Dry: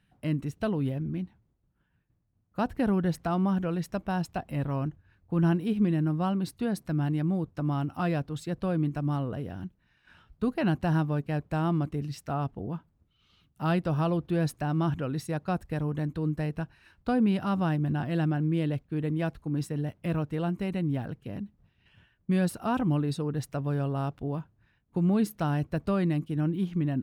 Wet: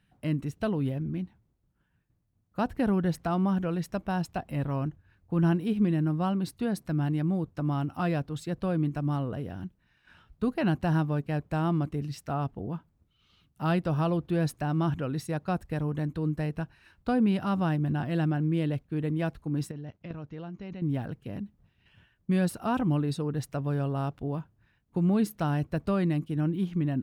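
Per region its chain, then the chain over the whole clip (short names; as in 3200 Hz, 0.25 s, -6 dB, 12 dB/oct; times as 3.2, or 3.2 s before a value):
19.71–20.82 brick-wall FIR low-pass 7000 Hz + level quantiser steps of 13 dB
whole clip: dry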